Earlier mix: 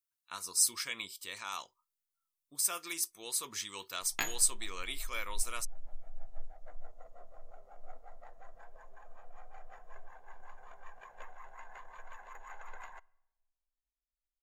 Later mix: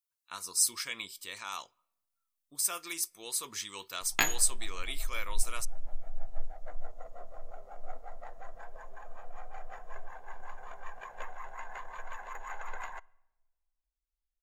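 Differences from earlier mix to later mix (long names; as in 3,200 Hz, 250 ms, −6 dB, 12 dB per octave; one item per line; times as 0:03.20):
speech: send on
background +7.5 dB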